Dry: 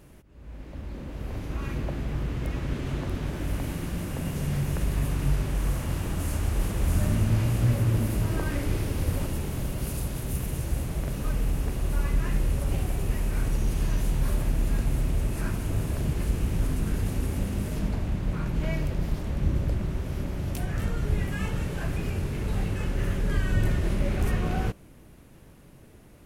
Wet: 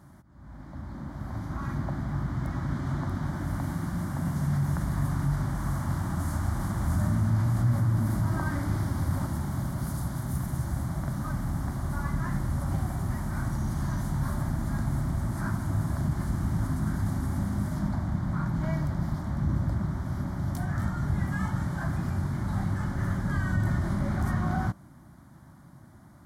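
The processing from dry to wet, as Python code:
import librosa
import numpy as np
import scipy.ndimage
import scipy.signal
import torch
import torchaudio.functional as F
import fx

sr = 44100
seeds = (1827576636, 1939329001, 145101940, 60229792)

p1 = scipy.signal.sosfilt(scipy.signal.butter(2, 100.0, 'highpass', fs=sr, output='sos'), x)
p2 = fx.high_shelf(p1, sr, hz=5300.0, db=-12.0)
p3 = fx.over_compress(p2, sr, threshold_db=-29.0, ratio=-1.0)
p4 = p2 + (p3 * 10.0 ** (-2.5 / 20.0))
y = fx.fixed_phaser(p4, sr, hz=1100.0, stages=4)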